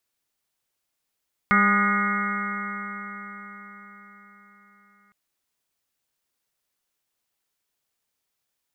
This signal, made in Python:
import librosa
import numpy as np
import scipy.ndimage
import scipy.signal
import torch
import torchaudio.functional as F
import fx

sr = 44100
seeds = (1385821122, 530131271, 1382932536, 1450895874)

y = fx.additive_stiff(sr, length_s=3.61, hz=200.0, level_db=-21.0, upper_db=(-12.5, -19, -12.5, -16.5, 2.5, -1.0, -11.0, -4, -2.0), decay_s=4.95, stiffness=0.0015)